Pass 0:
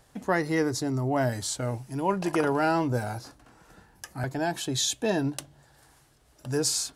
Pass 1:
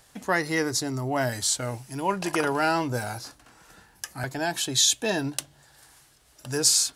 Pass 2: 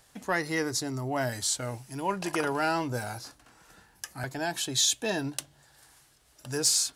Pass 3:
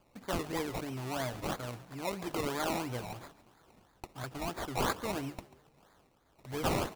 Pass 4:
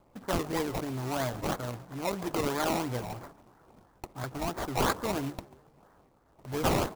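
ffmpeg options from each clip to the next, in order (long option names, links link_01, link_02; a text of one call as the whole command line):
ffmpeg -i in.wav -af "tiltshelf=frequency=1200:gain=-5,volume=2.5dB" out.wav
ffmpeg -i in.wav -af "asoftclip=type=tanh:threshold=-8dB,volume=-3.5dB" out.wav
ffmpeg -i in.wav -filter_complex "[0:a]acrusher=samples=22:mix=1:aa=0.000001:lfo=1:lforange=13.2:lforate=3,asplit=4[link_01][link_02][link_03][link_04];[link_02]adelay=139,afreqshift=56,volume=-17.5dB[link_05];[link_03]adelay=278,afreqshift=112,volume=-25.2dB[link_06];[link_04]adelay=417,afreqshift=168,volume=-33dB[link_07];[link_01][link_05][link_06][link_07]amix=inputs=4:normalize=0,volume=-6dB" out.wav
ffmpeg -i in.wav -filter_complex "[0:a]acrossover=split=1900[link_01][link_02];[link_01]acrusher=bits=3:mode=log:mix=0:aa=0.000001[link_03];[link_02]aeval=exprs='sgn(val(0))*max(abs(val(0))-0.00335,0)':channel_layout=same[link_04];[link_03][link_04]amix=inputs=2:normalize=0,volume=4.5dB" out.wav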